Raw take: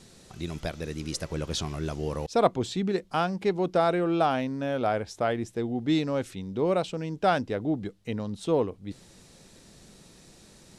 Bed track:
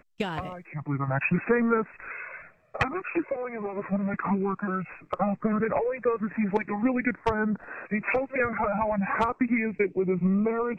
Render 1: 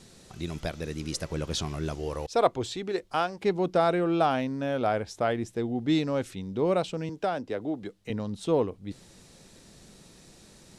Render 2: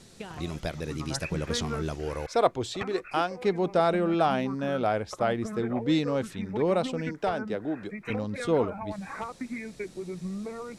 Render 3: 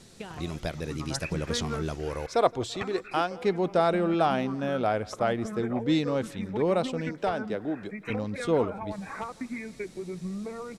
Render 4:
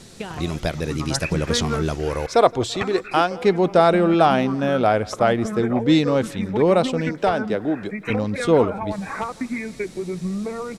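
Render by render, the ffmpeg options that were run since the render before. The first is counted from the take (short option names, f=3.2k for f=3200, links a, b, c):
-filter_complex "[0:a]asettb=1/sr,asplit=3[a][b][c];[a]atrim=end=1.954[d];[b]atrim=start=1.95:end=3.44,asetpts=PTS-STARTPTS,afade=t=in:d=0.004:c=qsin,afade=t=out:st=1.486:d=0.004:c=qsin,equalizer=f=190:t=o:w=0.7:g=-12[e];[c]atrim=start=3.436[f];[d][e]acrossfade=d=0.004:c1=hsin:c2=qsin[g];[g][f]acrossfade=d=0.004:c1=qsin:c2=hsin,asettb=1/sr,asplit=3[h][i][j];[h]atrim=end=7.094[k];[i]atrim=start=7.09:end=8.1,asetpts=PTS-STARTPTS,afade=t=in:d=0.004:c=qsin,afade=t=out:st=1.006:d=0.004:c=qsin,acrossover=split=260|880[l][m][n];[l]acompressor=threshold=-46dB:ratio=4[o];[m]acompressor=threshold=-27dB:ratio=4[p];[n]acompressor=threshold=-37dB:ratio=4[q];[o][p][q]amix=inputs=3:normalize=0[r];[j]atrim=start=8.096[s];[k][r]acrossfade=d=0.004:c1=hsin:c2=qsin[t];[t][s]acrossfade=d=0.004:c1=qsin:c2=hsin"
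-filter_complex "[1:a]volume=-11dB[a];[0:a][a]amix=inputs=2:normalize=0"
-af "aecho=1:1:168|336|504:0.0668|0.0348|0.0181"
-af "volume=8.5dB,alimiter=limit=-2dB:level=0:latency=1"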